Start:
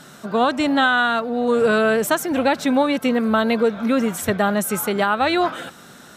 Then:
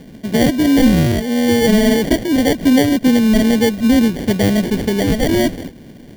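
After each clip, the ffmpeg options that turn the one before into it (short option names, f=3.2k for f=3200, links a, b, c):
-af "acrusher=samples=34:mix=1:aa=0.000001,equalizer=f=250:t=o:w=1:g=6,equalizer=f=1k:t=o:w=1:g=-11,equalizer=f=8k:t=o:w=1:g=-4,volume=3.5dB"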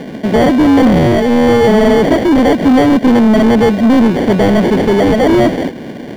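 -filter_complex "[0:a]asplit=2[a][b];[b]highpass=f=720:p=1,volume=28dB,asoftclip=type=tanh:threshold=-1dB[c];[a][c]amix=inputs=2:normalize=0,lowpass=f=1.1k:p=1,volume=-6dB"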